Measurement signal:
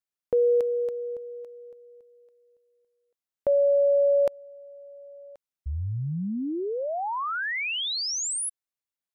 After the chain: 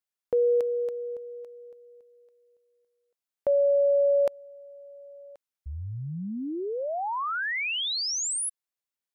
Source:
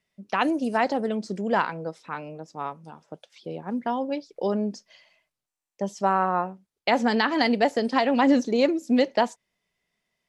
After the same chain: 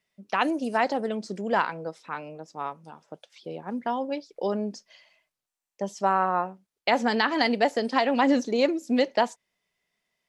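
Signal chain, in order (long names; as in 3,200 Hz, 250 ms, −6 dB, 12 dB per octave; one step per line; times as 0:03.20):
low-shelf EQ 270 Hz −6 dB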